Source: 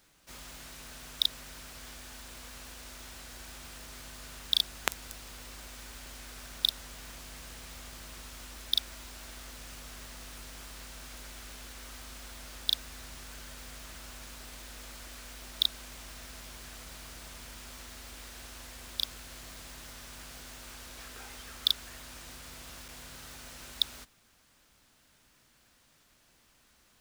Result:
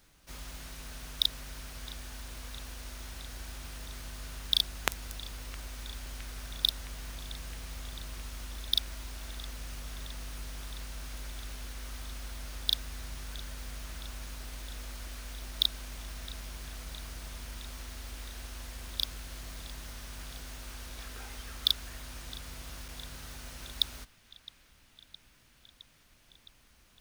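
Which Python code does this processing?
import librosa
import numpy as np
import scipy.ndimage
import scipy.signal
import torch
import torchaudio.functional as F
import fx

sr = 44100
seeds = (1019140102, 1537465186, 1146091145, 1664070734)

p1 = fx.low_shelf(x, sr, hz=110.0, db=10.5)
p2 = fx.notch(p1, sr, hz=7500.0, q=16.0)
y = p2 + fx.echo_banded(p2, sr, ms=664, feedback_pct=83, hz=2500.0, wet_db=-19.0, dry=0)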